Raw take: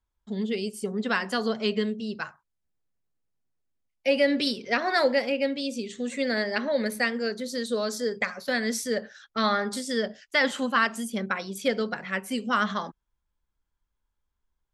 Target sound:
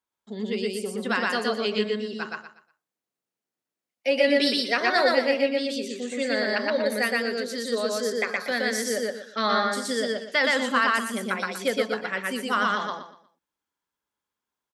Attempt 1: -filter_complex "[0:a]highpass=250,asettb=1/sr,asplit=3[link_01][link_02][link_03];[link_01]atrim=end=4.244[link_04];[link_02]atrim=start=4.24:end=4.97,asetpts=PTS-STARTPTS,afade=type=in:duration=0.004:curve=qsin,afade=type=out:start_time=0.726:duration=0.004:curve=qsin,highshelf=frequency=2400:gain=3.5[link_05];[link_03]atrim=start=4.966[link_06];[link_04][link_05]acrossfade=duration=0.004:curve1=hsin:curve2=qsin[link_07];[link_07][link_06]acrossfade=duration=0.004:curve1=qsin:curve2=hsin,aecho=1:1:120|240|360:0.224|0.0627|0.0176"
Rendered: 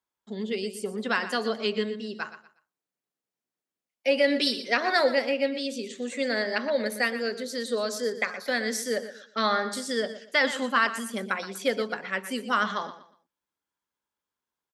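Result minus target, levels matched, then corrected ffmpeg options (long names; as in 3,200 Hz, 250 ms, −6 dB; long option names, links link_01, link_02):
echo-to-direct −12 dB
-filter_complex "[0:a]highpass=250,asettb=1/sr,asplit=3[link_01][link_02][link_03];[link_01]atrim=end=4.244[link_04];[link_02]atrim=start=4.24:end=4.97,asetpts=PTS-STARTPTS,afade=type=in:duration=0.004:curve=qsin,afade=type=out:start_time=0.726:duration=0.004:curve=qsin,highshelf=frequency=2400:gain=3.5[link_05];[link_03]atrim=start=4.966[link_06];[link_04][link_05]acrossfade=duration=0.004:curve1=hsin:curve2=qsin[link_07];[link_07][link_06]acrossfade=duration=0.004:curve1=qsin:curve2=hsin,aecho=1:1:120|240|360|480:0.891|0.25|0.0699|0.0196"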